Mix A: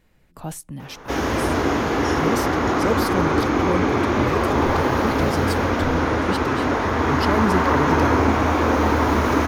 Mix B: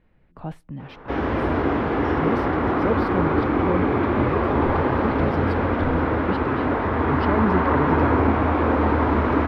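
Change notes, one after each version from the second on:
master: add air absorption 430 m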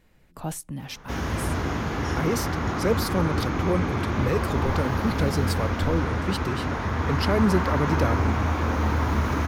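background: add EQ curve 180 Hz 0 dB, 280 Hz -10 dB, 460 Hz -11 dB, 1400 Hz -7 dB; master: remove air absorption 430 m

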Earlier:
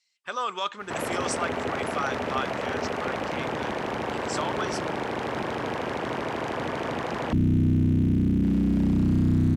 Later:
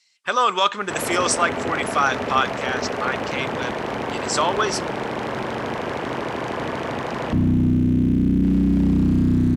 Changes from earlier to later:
speech +10.5 dB; reverb: on, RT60 1.9 s

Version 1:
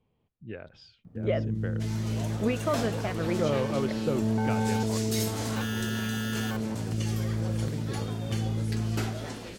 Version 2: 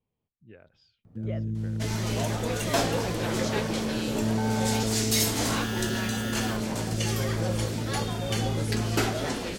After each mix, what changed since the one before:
speech -10.5 dB; second sound +8.5 dB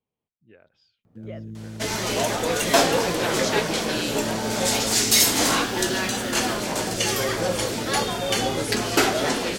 second sound +8.5 dB; master: add low shelf 160 Hz -11.5 dB

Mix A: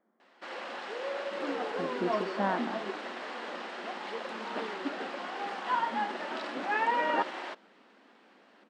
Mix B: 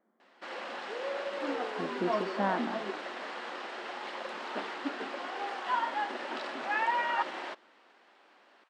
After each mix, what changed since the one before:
second sound: add HPF 810 Hz 24 dB/oct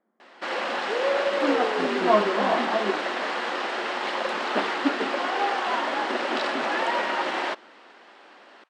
first sound +12.0 dB

